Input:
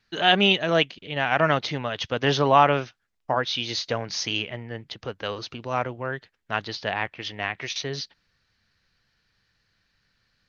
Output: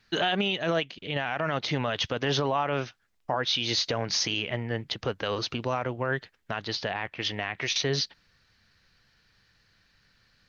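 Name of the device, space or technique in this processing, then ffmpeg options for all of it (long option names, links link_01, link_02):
stacked limiters: -af "alimiter=limit=-9.5dB:level=0:latency=1:release=464,alimiter=limit=-15.5dB:level=0:latency=1:release=292,alimiter=limit=-21.5dB:level=0:latency=1:release=43,volume=5dB"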